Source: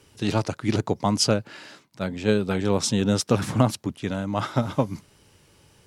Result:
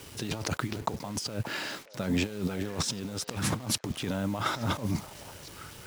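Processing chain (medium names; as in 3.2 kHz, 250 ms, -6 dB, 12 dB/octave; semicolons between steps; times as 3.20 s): compressor with a negative ratio -33 dBFS, ratio -1; bit crusher 8-bit; repeats whose band climbs or falls 576 ms, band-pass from 680 Hz, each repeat 1.4 oct, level -12 dB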